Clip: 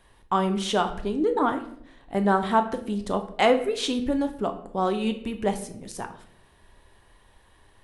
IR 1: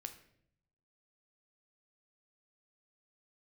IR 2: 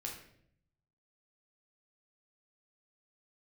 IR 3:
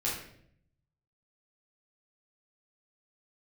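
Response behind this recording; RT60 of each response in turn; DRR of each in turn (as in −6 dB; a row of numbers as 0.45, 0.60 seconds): 1; 0.65, 0.65, 0.65 seconds; 6.5, −2.0, −8.5 decibels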